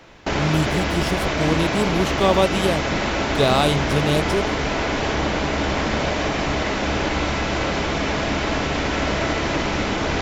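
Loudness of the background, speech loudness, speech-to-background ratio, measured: -22.5 LUFS, -22.5 LUFS, 0.0 dB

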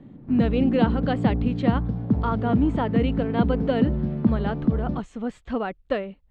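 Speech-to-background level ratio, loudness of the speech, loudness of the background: -2.5 dB, -27.5 LUFS, -25.0 LUFS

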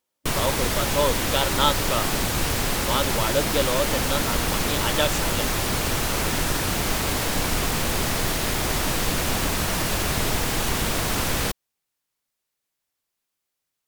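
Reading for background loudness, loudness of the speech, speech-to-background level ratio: -23.5 LUFS, -27.0 LUFS, -3.5 dB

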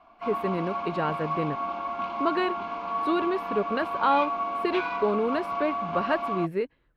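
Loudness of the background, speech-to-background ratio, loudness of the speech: -31.0 LUFS, 2.0 dB, -29.0 LUFS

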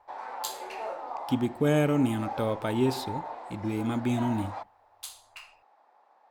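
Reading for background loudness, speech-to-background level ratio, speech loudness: -39.5 LUFS, 10.5 dB, -29.0 LUFS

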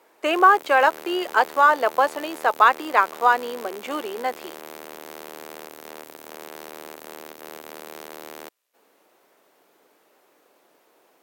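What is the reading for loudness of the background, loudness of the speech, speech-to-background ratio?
-39.5 LUFS, -20.0 LUFS, 19.5 dB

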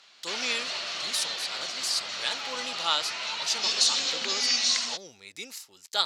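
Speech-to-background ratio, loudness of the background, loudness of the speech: -4.5 dB, -27.5 LUFS, -32.0 LUFS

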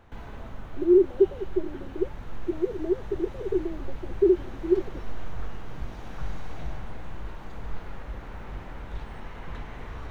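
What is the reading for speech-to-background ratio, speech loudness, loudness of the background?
15.5 dB, -26.0 LUFS, -41.5 LUFS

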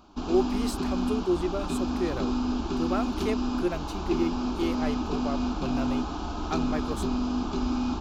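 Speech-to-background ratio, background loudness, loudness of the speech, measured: -2.5 dB, -30.0 LUFS, -32.5 LUFS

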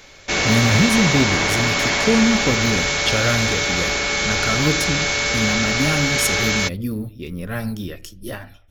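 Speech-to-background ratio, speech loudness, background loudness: -4.0 dB, -22.5 LUFS, -18.5 LUFS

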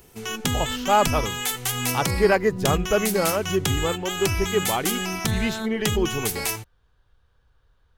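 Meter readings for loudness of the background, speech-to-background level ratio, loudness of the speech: -26.5 LUFS, 1.5 dB, -25.0 LUFS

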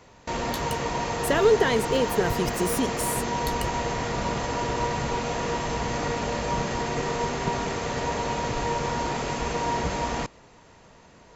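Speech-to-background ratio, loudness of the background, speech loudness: 3.0 dB, -28.0 LUFS, -25.0 LUFS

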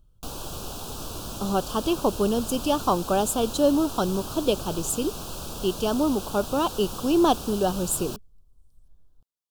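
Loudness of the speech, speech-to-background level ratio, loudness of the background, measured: -25.5 LUFS, 10.0 dB, -35.5 LUFS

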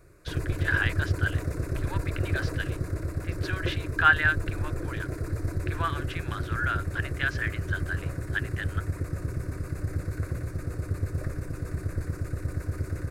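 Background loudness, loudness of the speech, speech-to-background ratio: -32.5 LUFS, -30.0 LUFS, 2.5 dB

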